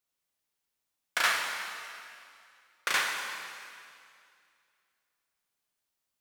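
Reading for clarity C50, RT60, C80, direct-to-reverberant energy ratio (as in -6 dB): 2.5 dB, 2.4 s, 3.5 dB, 0.5 dB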